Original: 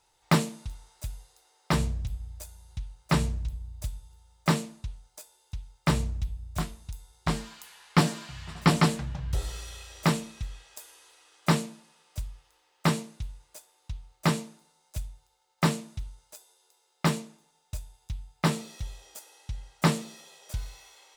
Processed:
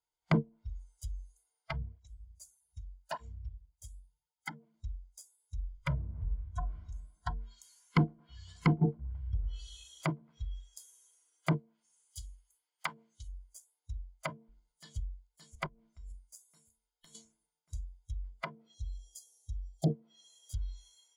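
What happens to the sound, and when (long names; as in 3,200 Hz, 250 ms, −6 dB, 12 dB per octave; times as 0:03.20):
0:01.71–0:04.74: through-zero flanger with one copy inverted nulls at 1.7 Hz, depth 4.1 ms
0:05.55–0:06.69: thrown reverb, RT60 1.4 s, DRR 1.5 dB
0:07.65–0:10.47: repeating echo 111 ms, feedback 39%, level −13.5 dB
0:11.57–0:13.28: spectral tilt +2 dB per octave
0:13.92–0:14.98: delay throw 570 ms, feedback 65%, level −12 dB
0:15.66–0:17.15: downward compressor 10 to 1, threshold −39 dBFS
0:18.74–0:19.90: flat-topped bell 1,700 Hz −13.5 dB
whole clip: treble cut that deepens with the level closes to 540 Hz, closed at −23 dBFS; noise reduction from a noise print of the clip's start 21 dB; EQ curve with evenly spaced ripples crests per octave 1.8, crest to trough 9 dB; level −4.5 dB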